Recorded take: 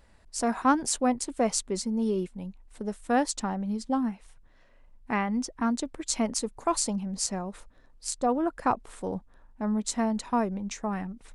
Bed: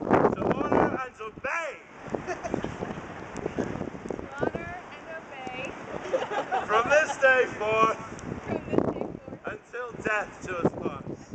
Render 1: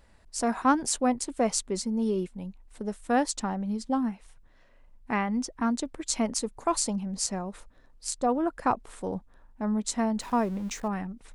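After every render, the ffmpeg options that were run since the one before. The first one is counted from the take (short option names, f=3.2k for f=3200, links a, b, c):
-filter_complex "[0:a]asettb=1/sr,asplit=3[a][b][c];[a]atrim=end=10.204[d];[b]atrim=start=10.2:end=10.88,asetpts=PTS-STARTPTS,afade=t=in:d=0.004:c=qsin,afade=t=out:st=0.676:d=0.004:c=qsin,aeval=exprs='val(0)+0.5*0.00668*sgn(val(0))':c=same[e];[c]atrim=start=10.876[f];[d][e]acrossfade=d=0.004:c1=hsin:c2=qsin[g];[g][f]acrossfade=d=0.004:c1=qsin:c2=hsin"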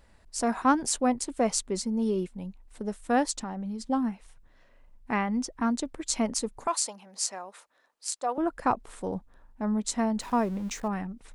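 -filter_complex "[0:a]asettb=1/sr,asplit=3[a][b][c];[a]atrim=end=3.364[d];[b]atrim=start=3.36:end=3.83,asetpts=PTS-STARTPTS,afade=t=in:d=0.004:c=qsin,afade=t=out:st=0.466:d=0.004:c=qsin,acompressor=threshold=-31dB:ratio=6:attack=3.2:release=140:knee=1:detection=peak[e];[c]atrim=start=3.826[f];[d][e]acrossfade=d=0.004:c1=hsin:c2=qsin[g];[g][f]acrossfade=d=0.004:c1=qsin:c2=hsin,asettb=1/sr,asplit=3[h][i][j];[h]atrim=end=6.674[k];[i]atrim=start=6.67:end=8.38,asetpts=PTS-STARTPTS,afade=t=in:d=0.004:c=qsin,afade=t=out:st=1.706:d=0.004:c=qsin,highpass=660[l];[j]atrim=start=8.376[m];[k][l]acrossfade=d=0.004:c1=hsin:c2=qsin[n];[n][m]acrossfade=d=0.004:c1=qsin:c2=hsin"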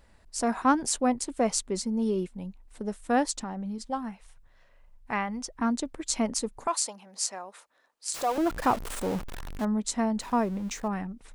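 -filter_complex "[0:a]asettb=1/sr,asplit=3[a][b][c];[a]atrim=end=3.784[d];[b]atrim=start=3.78:end=5.55,asetpts=PTS-STARTPTS,afade=t=in:d=0.004:c=qsin,afade=t=out:st=1.766:d=0.004:c=qsin,equalizer=f=280:w=1.5:g=-10[e];[c]atrim=start=5.546[f];[d][e]acrossfade=d=0.004:c1=hsin:c2=qsin[g];[g][f]acrossfade=d=0.004:c1=qsin:c2=hsin,asettb=1/sr,asplit=3[h][i][j];[h]atrim=end=8.144[k];[i]atrim=start=8.14:end=9.65,asetpts=PTS-STARTPTS,afade=t=in:d=0.004:c=qsin,afade=t=out:st=1.506:d=0.004:c=qsin,aeval=exprs='val(0)+0.5*0.0266*sgn(val(0))':c=same[l];[j]atrim=start=9.646[m];[k][l]acrossfade=d=0.004:c1=hsin:c2=qsin[n];[n][m]acrossfade=d=0.004:c1=qsin:c2=hsin"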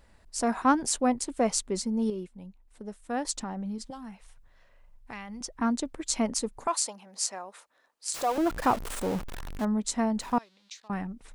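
-filter_complex "[0:a]asettb=1/sr,asplit=3[a][b][c];[a]atrim=end=3.904[d];[b]atrim=start=3.9:end=5.41,asetpts=PTS-STARTPTS,afade=t=in:d=0.004:c=qsin,afade=t=out:st=1.506:d=0.004:c=qsin,acrossover=split=130|3000[e][f][g];[f]acompressor=threshold=-40dB:ratio=5:attack=3.2:release=140:knee=2.83:detection=peak[h];[e][h][g]amix=inputs=3:normalize=0[i];[c]atrim=start=5.406[j];[d][i]acrossfade=d=0.004:c1=hsin:c2=qsin[k];[k][j]acrossfade=d=0.004:c1=qsin:c2=hsin,asettb=1/sr,asplit=3[l][m][n];[l]atrim=end=10.384[o];[m]atrim=start=10.38:end=10.9,asetpts=PTS-STARTPTS,afade=t=in:d=0.004:c=qsin,afade=t=out:st=0.516:d=0.004:c=qsin,bandpass=f=4k:t=q:w=2.9[p];[n]atrim=start=10.896[q];[o][p]acrossfade=d=0.004:c1=hsin:c2=qsin[r];[r][q]acrossfade=d=0.004:c1=qsin:c2=hsin,asplit=3[s][t][u];[s]atrim=end=2.102[v];[t]atrim=start=2.098:end=3.252,asetpts=PTS-STARTPTS,volume=-7dB[w];[u]atrim=start=3.248[x];[v][w]acrossfade=d=0.004:c1=hsin:c2=hsin[y];[y][x]acrossfade=d=0.004:c1=hsin:c2=hsin"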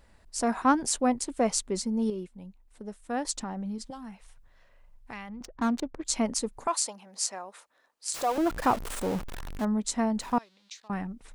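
-filter_complex "[0:a]asettb=1/sr,asplit=3[a][b][c];[a]atrim=end=5.294[d];[b]atrim=start=5.29:end=6.05,asetpts=PTS-STARTPTS,afade=t=in:d=0.004:c=qsin,afade=t=out:st=0.756:d=0.004:c=qsin,adynamicsmooth=sensitivity=7.5:basefreq=750[e];[c]atrim=start=6.046[f];[d][e]acrossfade=d=0.004:c1=hsin:c2=qsin[g];[g][f]acrossfade=d=0.004:c1=qsin:c2=hsin"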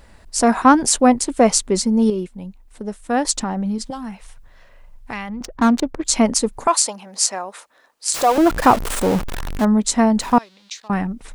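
-af "alimiter=level_in=12dB:limit=-1dB:release=50:level=0:latency=1"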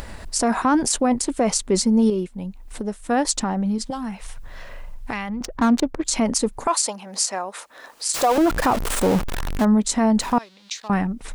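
-af "acompressor=mode=upward:threshold=-24dB:ratio=2.5,alimiter=limit=-10dB:level=0:latency=1:release=27"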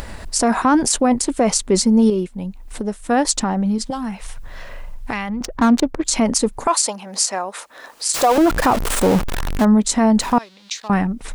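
-af "volume=3.5dB"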